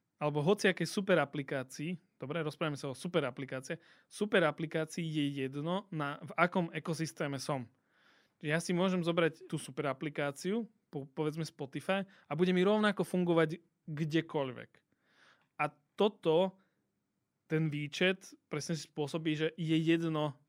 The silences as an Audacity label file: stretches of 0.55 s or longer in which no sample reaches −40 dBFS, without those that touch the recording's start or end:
7.630000	8.440000	silence
14.630000	15.600000	silence
16.490000	17.500000	silence